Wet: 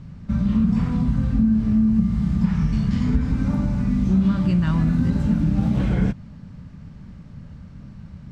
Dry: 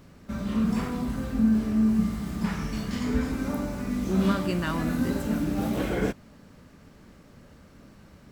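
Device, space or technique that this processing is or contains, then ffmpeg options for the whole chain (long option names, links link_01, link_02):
jukebox: -af "lowpass=5800,lowshelf=frequency=240:width_type=q:width=1.5:gain=13,acompressor=threshold=-15dB:ratio=5,equalizer=frequency=910:width_type=o:width=0.29:gain=3"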